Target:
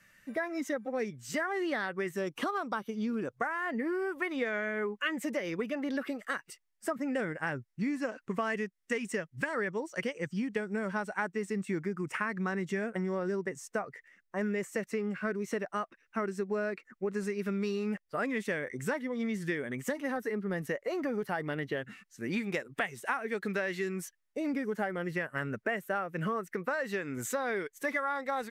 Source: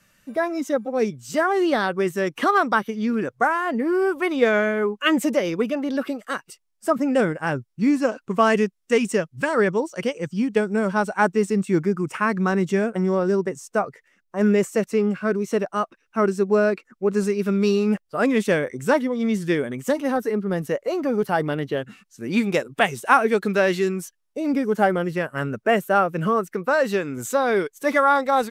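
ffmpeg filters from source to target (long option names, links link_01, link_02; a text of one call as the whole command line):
ffmpeg -i in.wav -af "asetnsamples=nb_out_samples=441:pad=0,asendcmd='2.17 equalizer g -4;3.37 equalizer g 9.5',equalizer=frequency=1900:width_type=o:width=0.55:gain=11,acompressor=threshold=-24dB:ratio=6,volume=-6dB" out.wav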